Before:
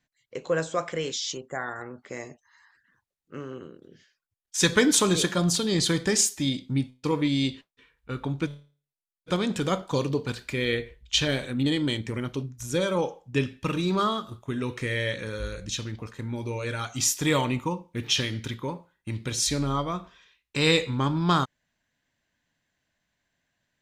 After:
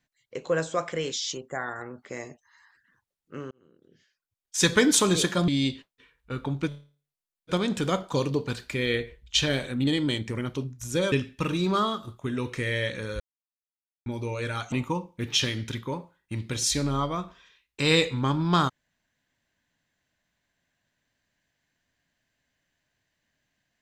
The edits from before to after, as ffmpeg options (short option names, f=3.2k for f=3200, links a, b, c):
-filter_complex "[0:a]asplit=7[a][b][c][d][e][f][g];[a]atrim=end=3.51,asetpts=PTS-STARTPTS,afade=t=out:st=3.506:d=0.004:c=hsin[h];[b]atrim=start=3.51:end=5.482,asetpts=PTS-STARTPTS,afade=t=in:d=1.05[i];[c]atrim=start=7.268:end=12.912[j];[d]atrim=start=13.358:end=15.44,asetpts=PTS-STARTPTS,afade=t=out:st=2.078:d=0.004:c=hsin[k];[e]atrim=start=15.44:end=16.3,asetpts=PTS-STARTPTS,volume=0[l];[f]atrim=start=16.3:end=16.962,asetpts=PTS-STARTPTS,afade=t=in:d=0.004:c=hsin[m];[g]atrim=start=17.478[n];[h][i]concat=n=2:v=0:a=1[o];[o][j]acrossfade=d=0.004:c1=hsin:c2=hsin[p];[k][l][m]concat=n=3:v=0:a=1[q];[p][q]acrossfade=d=0.004:c1=hsin:c2=hsin[r];[r][n]acrossfade=d=0.004:c1=hsin:c2=hsin"